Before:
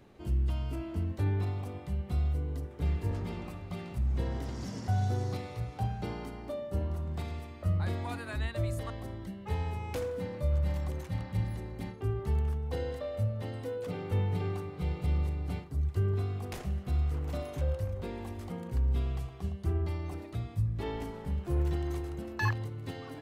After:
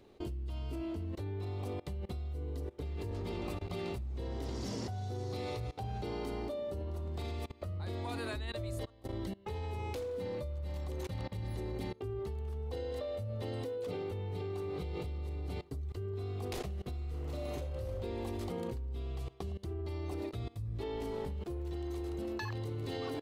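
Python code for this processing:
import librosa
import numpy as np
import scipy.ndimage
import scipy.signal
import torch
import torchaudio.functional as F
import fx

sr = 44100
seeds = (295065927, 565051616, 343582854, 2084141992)

y = fx.reverb_throw(x, sr, start_s=16.92, length_s=1.07, rt60_s=0.83, drr_db=-0.5)
y = fx.edit(y, sr, fx.fade_in_from(start_s=8.85, length_s=0.45, floor_db=-13.5), tone=tone)
y = fx.graphic_eq_15(y, sr, hz=(160, 400, 1600, 4000), db=(-7, 6, -4, 5))
y = fx.level_steps(y, sr, step_db=22)
y = y * librosa.db_to_amplitude(6.0)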